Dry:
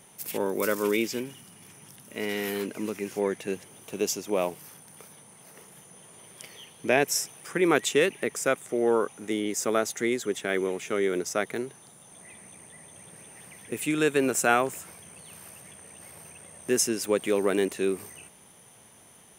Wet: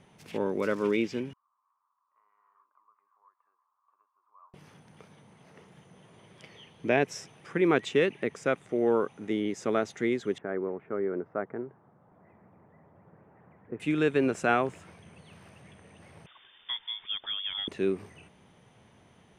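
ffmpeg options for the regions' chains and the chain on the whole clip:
ffmpeg -i in.wav -filter_complex "[0:a]asettb=1/sr,asplit=3[link_01][link_02][link_03];[link_01]atrim=end=1.334[link_04];[link_02]atrim=start=1.33:end=4.54,asetpts=PTS-STARTPTS,afade=type=in:duration=0.004:curve=qsin,afade=type=out:start_time=3.206:duration=0.004:curve=qsin,acompressor=threshold=-33dB:ratio=2.5:attack=3.2:release=140:knee=1:detection=peak,asuperpass=centerf=1100:order=4:qfactor=5.7,flanger=delay=2.9:depth=7.4:regen=64:speed=1.5:shape=sinusoidal[link_05];[link_03]atrim=start=4.536[link_06];[link_04][link_05]acrossfade=duration=0.004:curve1=hsin:curve2=qsin[link_07];[link_07][link_06]acrossfade=duration=0.004:curve1=qsin:curve2=hsin,asettb=1/sr,asplit=3[link_08][link_09][link_10];[link_08]atrim=end=10.384[link_11];[link_09]atrim=start=10.38:end=13.8,asetpts=PTS-STARTPTS,afade=type=in:duration=0.004:curve=qsin,afade=type=out:start_time=3.416:duration=0.004:curve=qsin,lowpass=frequency=1400:width=0.5412,lowpass=frequency=1400:width=1.3066,lowshelf=frequency=390:gain=-6[link_12];[link_10]atrim=start=13.796[link_13];[link_11][link_12]acrossfade=duration=0.004:curve1=hsin:curve2=qsin[link_14];[link_14][link_13]acrossfade=duration=0.004:curve1=qsin:curve2=hsin,asettb=1/sr,asplit=3[link_15][link_16][link_17];[link_15]atrim=end=16.264[link_18];[link_16]atrim=start=16.26:end=17.68,asetpts=PTS-STARTPTS,afade=type=in:duration=0.004:curve=qsin,afade=type=out:start_time=1.416:duration=0.004:curve=qsin,acrossover=split=670|1800[link_19][link_20][link_21];[link_19]acompressor=threshold=-26dB:ratio=4[link_22];[link_20]acompressor=threshold=-46dB:ratio=4[link_23];[link_21]acompressor=threshold=-40dB:ratio=4[link_24];[link_22][link_23][link_24]amix=inputs=3:normalize=0,lowpass=frequency=3100:width_type=q:width=0.5098,lowpass=frequency=3100:width_type=q:width=0.6013,lowpass=frequency=3100:width_type=q:width=0.9,lowpass=frequency=3100:width_type=q:width=2.563,afreqshift=-3700[link_25];[link_17]atrim=start=17.676[link_26];[link_18][link_25]acrossfade=duration=0.004:curve1=hsin:curve2=qsin[link_27];[link_27][link_26]acrossfade=duration=0.004:curve1=qsin:curve2=hsin,lowpass=3600,lowshelf=frequency=240:gain=8,volume=-3.5dB" out.wav

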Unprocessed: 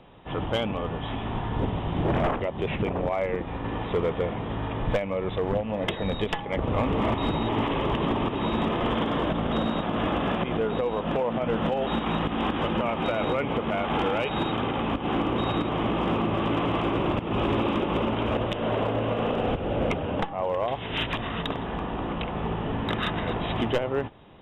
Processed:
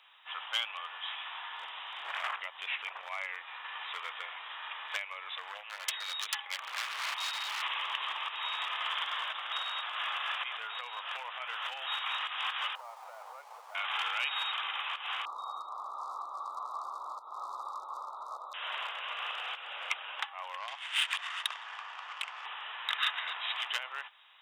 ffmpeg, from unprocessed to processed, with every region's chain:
ffmpeg -i in.wav -filter_complex "[0:a]asettb=1/sr,asplit=3[link_01][link_02][link_03];[link_01]atrim=end=5.694[link_04];[link_02]atrim=start=5.69:end=7.62,asetpts=PTS-STARTPTS,afade=type=in:duration=0.004:curve=qsin,afade=type=out:start_time=1.926:duration=0.004:curve=qsin,highpass=frequency=170:poles=1,aeval=exprs='0.0668*(abs(mod(val(0)/0.0668+3,4)-2)-1)':channel_layout=same[link_05];[link_03]atrim=start=7.616[link_06];[link_04][link_05]acrossfade=duration=0.004:curve1=hsin:curve2=qsin[link_07];[link_07][link_06]acrossfade=duration=0.004:curve1=qsin:curve2=hsin,asettb=1/sr,asplit=3[link_08][link_09][link_10];[link_08]atrim=end=12.754[link_11];[link_09]atrim=start=12.75:end=13.75,asetpts=PTS-STARTPTS,afade=type=in:duration=0.004:curve=qsin,afade=type=out:start_time=0.996:duration=0.004:curve=qsin,asuperpass=centerf=630:order=4:qfactor=1.4,aeval=exprs='sgn(val(0))*max(abs(val(0))-0.00119,0)':channel_layout=same[link_12];[link_10]atrim=start=13.746[link_13];[link_11][link_12]acrossfade=duration=0.004:curve1=hsin:curve2=qsin[link_14];[link_14][link_13]acrossfade=duration=0.004:curve1=qsin:curve2=hsin,asettb=1/sr,asplit=3[link_15][link_16][link_17];[link_15]atrim=end=15.254[link_18];[link_16]atrim=start=15.25:end=18.54,asetpts=PTS-STARTPTS,afade=type=in:duration=0.004:curve=qsin,afade=type=out:start_time=3.286:duration=0.004:curve=qsin,acrossover=split=3200[link_19][link_20];[link_20]acompressor=threshold=-46dB:ratio=4:attack=1:release=60[link_21];[link_19][link_21]amix=inputs=2:normalize=0,asuperstop=centerf=2300:order=20:qfactor=0.84[link_22];[link_17]atrim=start=18.536[link_23];[link_18][link_22]acrossfade=duration=0.004:curve1=hsin:curve2=qsin[link_24];[link_24][link_23]acrossfade=duration=0.004:curve1=qsin:curve2=hsin,asettb=1/sr,asplit=3[link_25][link_26][link_27];[link_25]atrim=end=20.574[link_28];[link_26]atrim=start=20.57:end=22.45,asetpts=PTS-STARTPTS,afade=type=in:duration=0.004:curve=qsin,afade=type=out:start_time=1.876:duration=0.004:curve=qsin,lowshelf=frequency=320:gain=-9.5,adynamicsmooth=sensitivity=4:basefreq=2600[link_29];[link_27]atrim=start=22.446[link_30];[link_28][link_29]acrossfade=duration=0.004:curve1=hsin:curve2=qsin[link_31];[link_31][link_30]acrossfade=duration=0.004:curve1=qsin:curve2=hsin,highpass=frequency=1100:width=0.5412,highpass=frequency=1100:width=1.3066,highshelf=frequency=2200:gain=10,volume=-4.5dB" out.wav

